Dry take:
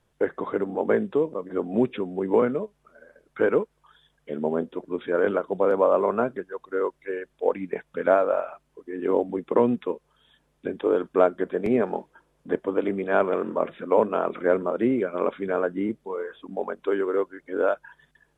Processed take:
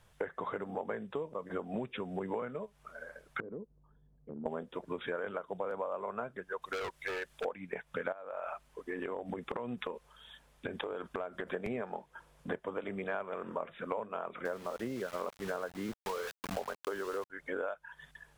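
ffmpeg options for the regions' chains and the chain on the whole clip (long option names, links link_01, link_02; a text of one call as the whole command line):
ffmpeg -i in.wav -filter_complex "[0:a]asettb=1/sr,asplit=3[link_01][link_02][link_03];[link_01]atrim=end=3.404[link_04];[link_02]atrim=start=3.4:end=4.46,asetpts=PTS-STARTPTS,afade=type=in:duration=0.004:curve=qsin,afade=type=out:start_time=1.056:duration=0.004:curve=qsin,lowpass=frequency=290:width_type=q:width=1.5,acompressor=threshold=-43dB:ratio=3:attack=3.2:release=140:knee=1:detection=peak[link_05];[link_03]atrim=start=4.456[link_06];[link_04][link_05]acrossfade=duration=0.004:curve1=hsin:curve2=qsin[link_07];[link_07][link_06]acrossfade=duration=0.004:curve1=qsin:curve2=hsin,asettb=1/sr,asplit=3[link_08][link_09][link_10];[link_08]atrim=end=6.624[link_11];[link_09]atrim=start=6.62:end=7.45,asetpts=PTS-STARTPTS,afade=type=in:duration=0.004:curve=qsin,afade=type=out:start_time=0.826:duration=0.004:curve=qsin,highshelf=frequency=2500:gain=7.5,asoftclip=type=hard:threshold=-30dB[link_12];[link_10]atrim=start=7.446[link_13];[link_11][link_12]acrossfade=duration=0.004:curve1=hsin:curve2=qsin[link_14];[link_14][link_13]acrossfade=duration=0.004:curve1=qsin:curve2=hsin,asettb=1/sr,asplit=3[link_15][link_16][link_17];[link_15]atrim=end=8.124[link_18];[link_16]atrim=start=8.12:end=11.48,asetpts=PTS-STARTPTS,afade=type=in:duration=0.004:curve=qsin,afade=type=out:start_time=3.356:duration=0.004:curve=qsin,acompressor=threshold=-29dB:ratio=6:attack=3.2:release=140:knee=1:detection=peak,equalizer=frequency=150:width_type=o:width=0.4:gain=-4.5[link_19];[link_17]atrim=start=11.476[link_20];[link_18][link_19]acrossfade=duration=0.004:curve1=hsin:curve2=qsin[link_21];[link_21][link_20]acrossfade=duration=0.004:curve1=qsin:curve2=hsin,asettb=1/sr,asplit=3[link_22][link_23][link_24];[link_22]atrim=end=14.454[link_25];[link_23]atrim=start=14.45:end=17.3,asetpts=PTS-STARTPTS,afade=type=in:duration=0.004:curve=qsin,afade=type=out:start_time=2.846:duration=0.004:curve=qsin,equalizer=frequency=2300:width_type=o:width=0.26:gain=-10,aeval=exprs='val(0)*gte(abs(val(0)),0.0141)':channel_layout=same[link_26];[link_24]atrim=start=17.296[link_27];[link_25][link_26]acrossfade=duration=0.004:curve1=hsin:curve2=qsin[link_28];[link_28][link_27]acrossfade=duration=0.004:curve1=qsin:curve2=hsin,equalizer=frequency=310:width=1.1:gain=-12,acompressor=threshold=-41dB:ratio=10,volume=7dB" out.wav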